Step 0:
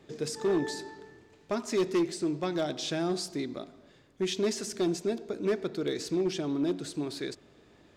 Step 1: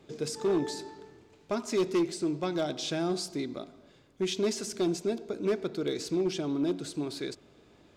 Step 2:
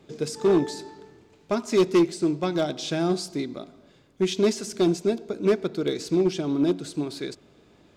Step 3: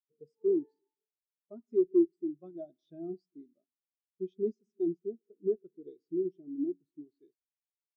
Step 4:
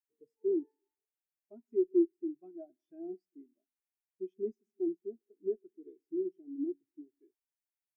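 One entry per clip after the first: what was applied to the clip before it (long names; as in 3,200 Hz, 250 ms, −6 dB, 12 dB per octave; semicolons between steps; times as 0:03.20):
notch filter 1,800 Hz, Q 10
parametric band 180 Hz +2.5 dB; expander for the loud parts 1.5 to 1, over −35 dBFS; level +8 dB
one-sided soft clipper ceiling −13 dBFS; every bin expanded away from the loudest bin 2.5 to 1; level −3 dB
phaser with its sweep stopped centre 790 Hz, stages 8; level −2 dB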